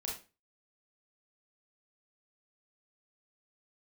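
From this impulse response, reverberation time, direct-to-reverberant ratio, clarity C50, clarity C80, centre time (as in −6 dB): 0.30 s, −3.0 dB, 4.5 dB, 11.5 dB, 35 ms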